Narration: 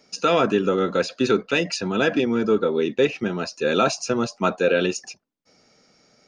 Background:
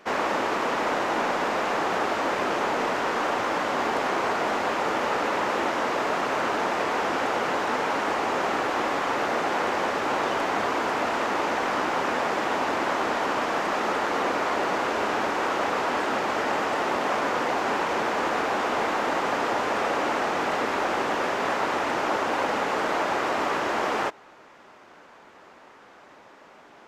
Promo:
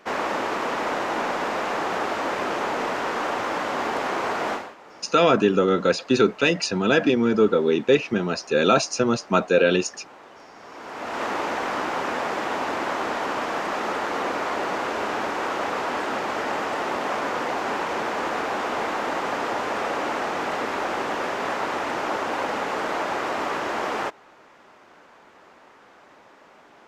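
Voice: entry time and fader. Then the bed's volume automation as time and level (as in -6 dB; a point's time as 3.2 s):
4.90 s, +1.5 dB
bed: 4.53 s -0.5 dB
4.76 s -21 dB
10.55 s -21 dB
11.23 s -1 dB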